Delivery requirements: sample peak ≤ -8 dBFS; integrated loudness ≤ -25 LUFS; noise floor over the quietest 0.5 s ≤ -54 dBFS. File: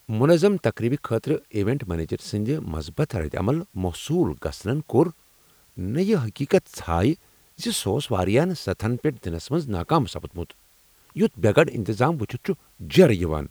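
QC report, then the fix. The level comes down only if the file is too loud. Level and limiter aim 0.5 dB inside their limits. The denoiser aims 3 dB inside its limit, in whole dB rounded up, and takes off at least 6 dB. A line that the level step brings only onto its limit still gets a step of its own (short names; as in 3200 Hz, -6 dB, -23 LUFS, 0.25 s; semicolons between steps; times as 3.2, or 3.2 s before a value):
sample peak -2.5 dBFS: fail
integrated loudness -24.0 LUFS: fail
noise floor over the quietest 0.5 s -58 dBFS: OK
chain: gain -1.5 dB; limiter -8.5 dBFS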